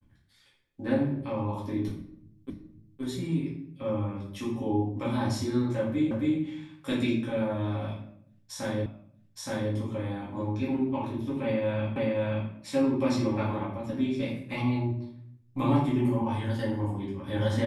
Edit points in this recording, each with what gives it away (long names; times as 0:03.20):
0:02.50: the same again, the last 0.52 s
0:06.11: the same again, the last 0.27 s
0:08.86: the same again, the last 0.87 s
0:11.96: the same again, the last 0.53 s